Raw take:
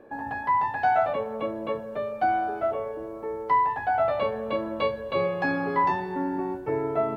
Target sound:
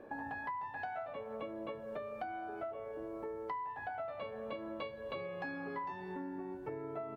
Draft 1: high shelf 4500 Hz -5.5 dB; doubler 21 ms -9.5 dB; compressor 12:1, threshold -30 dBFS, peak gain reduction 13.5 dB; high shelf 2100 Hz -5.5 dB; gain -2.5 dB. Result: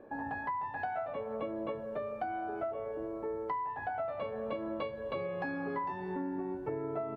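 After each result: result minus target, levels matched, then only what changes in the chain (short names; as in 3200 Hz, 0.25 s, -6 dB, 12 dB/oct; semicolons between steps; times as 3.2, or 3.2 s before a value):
compressor: peak gain reduction -6.5 dB; 4000 Hz band -5.0 dB
change: compressor 12:1, threshold -37 dBFS, peak gain reduction 19.5 dB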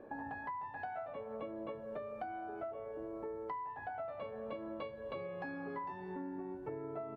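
4000 Hz band -5.0 dB
change: second high shelf 2100 Hz +3.5 dB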